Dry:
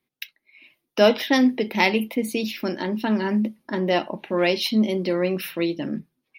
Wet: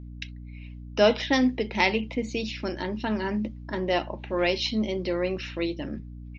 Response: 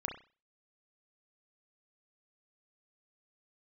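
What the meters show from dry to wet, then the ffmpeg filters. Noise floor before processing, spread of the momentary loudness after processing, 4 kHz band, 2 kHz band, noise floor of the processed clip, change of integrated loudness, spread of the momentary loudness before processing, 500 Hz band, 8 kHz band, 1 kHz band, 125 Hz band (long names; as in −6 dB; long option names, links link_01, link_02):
−80 dBFS, 16 LU, −3.0 dB, −3.0 dB, −41 dBFS, −4.0 dB, 11 LU, −3.5 dB, −5.5 dB, −3.0 dB, −3.0 dB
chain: -af "asubboost=boost=11:cutoff=53,aeval=exprs='val(0)+0.0158*(sin(2*PI*60*n/s)+sin(2*PI*2*60*n/s)/2+sin(2*PI*3*60*n/s)/3+sin(2*PI*4*60*n/s)/4+sin(2*PI*5*60*n/s)/5)':channel_layout=same,aresample=16000,aresample=44100,volume=-3dB"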